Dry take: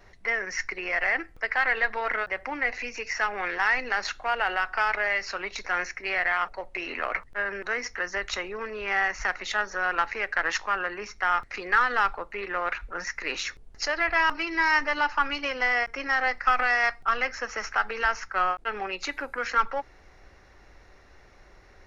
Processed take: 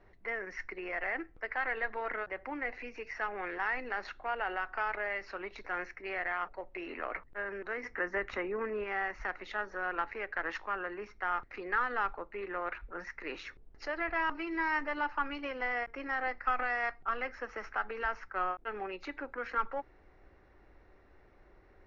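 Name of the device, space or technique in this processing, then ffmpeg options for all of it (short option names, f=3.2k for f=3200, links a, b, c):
phone in a pocket: -filter_complex "[0:a]asettb=1/sr,asplit=3[a][b][c];[a]atrim=end=7.834[d];[b]atrim=start=7.83:end=8.84,asetpts=PTS-STARTPTS,afade=t=in:d=0.004:c=qsin,afade=t=out:st=1.006:d=0.004:c=qsin,equalizer=f=125:t=o:w=1:g=4,equalizer=f=250:t=o:w=1:g=6,equalizer=f=500:t=o:w=1:g=3,equalizer=f=1k:t=o:w=1:g=3,equalizer=f=2k:t=o:w=1:g=6,equalizer=f=4k:t=o:w=1:g=-5[e];[c]atrim=start=8.836[f];[d][e]acrossfade=d=0.004:c1=hsin:c2=qsin[g];[g][f]acrossfade=d=0.004:c1=qsin:c2=hsin,lowpass=3.7k,equalizer=f=330:t=o:w=0.82:g=5,highshelf=f=2.3k:g=-8.5,volume=-7dB"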